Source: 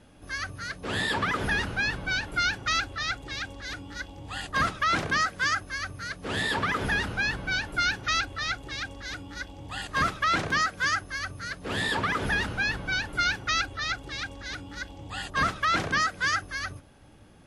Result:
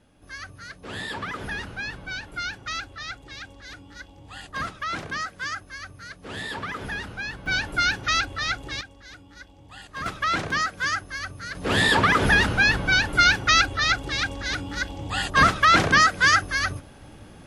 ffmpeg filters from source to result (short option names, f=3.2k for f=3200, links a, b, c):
-af "asetnsamples=n=441:p=0,asendcmd='7.46 volume volume 3.5dB;8.81 volume volume -8dB;10.06 volume volume 0.5dB;11.55 volume volume 8.5dB',volume=-5dB"